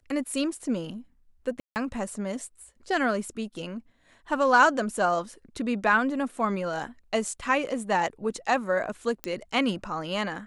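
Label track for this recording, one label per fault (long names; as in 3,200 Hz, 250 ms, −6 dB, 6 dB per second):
1.600000	1.760000	drop-out 159 ms
9.240000	9.240000	click −15 dBFS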